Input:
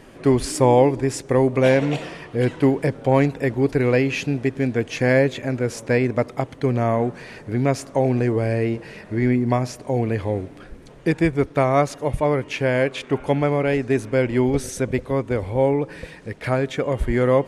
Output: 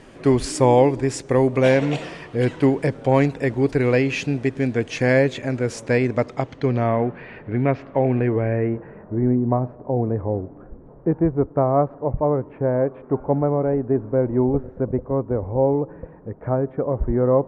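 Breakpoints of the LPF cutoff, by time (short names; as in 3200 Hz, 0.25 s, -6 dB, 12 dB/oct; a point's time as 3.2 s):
LPF 24 dB/oct
5.96 s 9600 Hz
6.77 s 5300 Hz
7.04 s 2800 Hz
8.27 s 2800 Hz
9.14 s 1100 Hz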